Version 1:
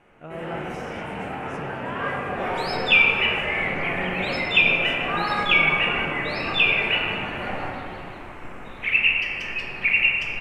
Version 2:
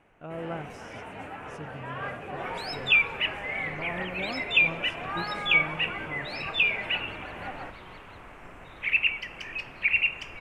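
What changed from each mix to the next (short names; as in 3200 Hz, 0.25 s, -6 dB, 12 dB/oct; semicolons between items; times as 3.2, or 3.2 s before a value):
reverb: off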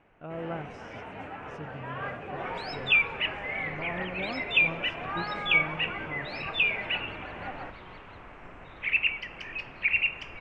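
master: add air absorption 110 m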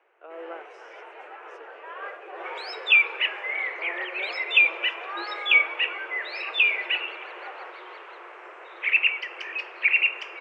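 second sound +6.5 dB; master: add rippled Chebyshev high-pass 340 Hz, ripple 3 dB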